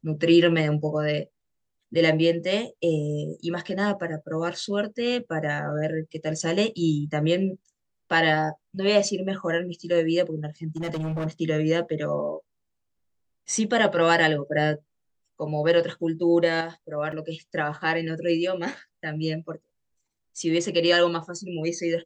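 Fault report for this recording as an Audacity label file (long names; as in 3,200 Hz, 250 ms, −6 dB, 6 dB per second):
10.760000	11.270000	clipping −25.5 dBFS
17.120000	17.130000	drop-out 5.4 ms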